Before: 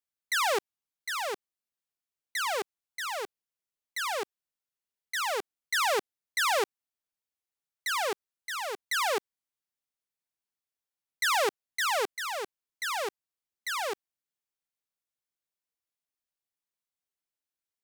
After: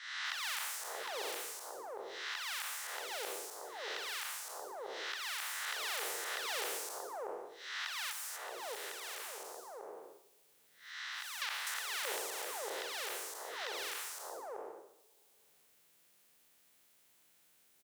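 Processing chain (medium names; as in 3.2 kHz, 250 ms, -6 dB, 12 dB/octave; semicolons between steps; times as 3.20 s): spectral blur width 335 ms; 8.11–11.42 s: compression 3:1, threshold -53 dBFS, peak gain reduction 14 dB; three bands offset in time mids, highs, lows 250/630 ms, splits 1/5.2 kHz; two-slope reverb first 0.63 s, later 2 s, from -25 dB, DRR 9.5 dB; three bands compressed up and down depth 70%; trim +4.5 dB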